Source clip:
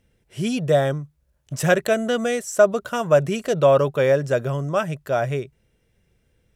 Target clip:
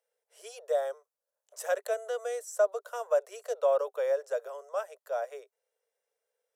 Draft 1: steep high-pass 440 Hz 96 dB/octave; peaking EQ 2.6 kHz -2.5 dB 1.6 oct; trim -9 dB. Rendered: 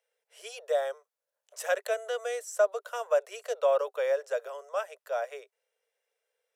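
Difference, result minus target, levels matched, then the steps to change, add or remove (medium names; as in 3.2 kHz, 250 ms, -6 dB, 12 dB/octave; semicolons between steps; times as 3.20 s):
2 kHz band +4.0 dB
change: peaking EQ 2.6 kHz -11 dB 1.6 oct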